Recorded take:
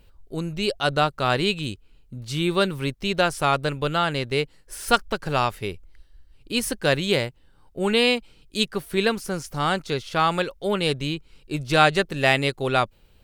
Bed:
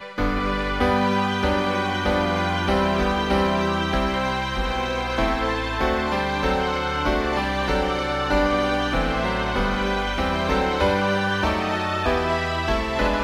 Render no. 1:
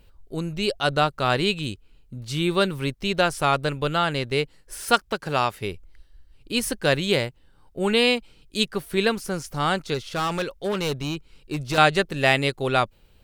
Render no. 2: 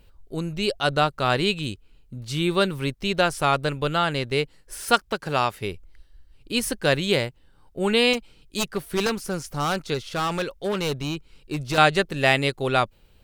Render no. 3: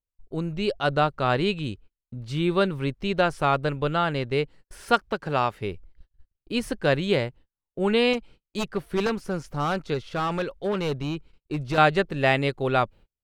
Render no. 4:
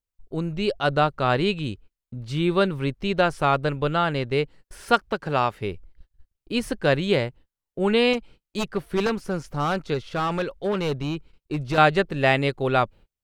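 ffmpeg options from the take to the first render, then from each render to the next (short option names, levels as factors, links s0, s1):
-filter_complex "[0:a]asettb=1/sr,asplit=3[s0][s1][s2];[s0]atrim=end=4.844[s3];[s1]atrim=start=4.84:end=5.61,asetpts=PTS-STARTPTS,afade=t=in:d=0.004:c=qsin,afade=t=out:st=0.766:d=0.004:c=qsin,highpass=f=130:p=1[s4];[s2]atrim=start=5.606[s5];[s3][s4]acrossfade=d=0.004:c1=hsin:c2=qsin[s6];[s6][s5]acrossfade=d=0.004:c1=qsin:c2=hsin,asettb=1/sr,asplit=3[s7][s8][s9];[s7]atrim=end=9.944[s10];[s8]atrim=start=9.94:end=11.78,asetpts=PTS-STARTPTS,afade=t=in:d=0.004:c=qsin,afade=t=out:st=1.836:d=0.004:c=qsin,volume=11.9,asoftclip=hard,volume=0.0841[s11];[s9]atrim=start=11.776[s12];[s10][s11]acrossfade=d=0.004:c1=hsin:c2=qsin[s13];[s13][s12]acrossfade=d=0.004:c1=qsin:c2=hsin"
-filter_complex "[0:a]asettb=1/sr,asplit=3[s0][s1][s2];[s0]atrim=end=8.134[s3];[s1]atrim=start=8.13:end=9.78,asetpts=PTS-STARTPTS,afade=t=in:d=0.004:c=qsin,afade=t=out:st=1.646:d=0.004:c=qsin,aeval=exprs='0.15*(abs(mod(val(0)/0.15+3,4)-2)-1)':c=same[s4];[s2]atrim=start=9.776[s5];[s3][s4]acrossfade=d=0.004:c1=hsin:c2=qsin[s6];[s6][s5]acrossfade=d=0.004:c1=qsin:c2=hsin"
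-af "agate=range=0.0112:threshold=0.00631:ratio=16:detection=peak,lowpass=f=1900:p=1"
-af "volume=1.19"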